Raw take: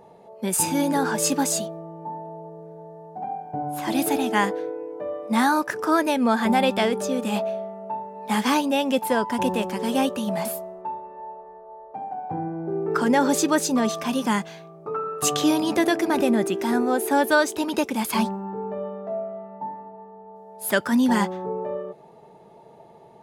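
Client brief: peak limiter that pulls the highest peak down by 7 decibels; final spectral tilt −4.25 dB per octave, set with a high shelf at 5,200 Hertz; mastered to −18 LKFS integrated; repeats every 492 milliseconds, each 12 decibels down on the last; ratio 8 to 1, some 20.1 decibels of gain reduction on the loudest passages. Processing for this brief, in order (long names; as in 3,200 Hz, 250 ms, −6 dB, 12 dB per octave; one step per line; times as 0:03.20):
high-shelf EQ 5,200 Hz +8 dB
downward compressor 8 to 1, threshold −35 dBFS
brickwall limiter −29 dBFS
repeating echo 492 ms, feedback 25%, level −12 dB
level +21 dB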